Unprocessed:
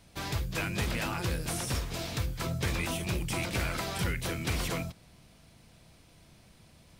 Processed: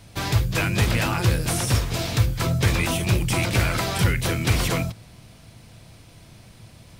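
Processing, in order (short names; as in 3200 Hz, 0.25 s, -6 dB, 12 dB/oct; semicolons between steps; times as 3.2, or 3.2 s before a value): bell 110 Hz +10 dB 0.26 oct; gain +9 dB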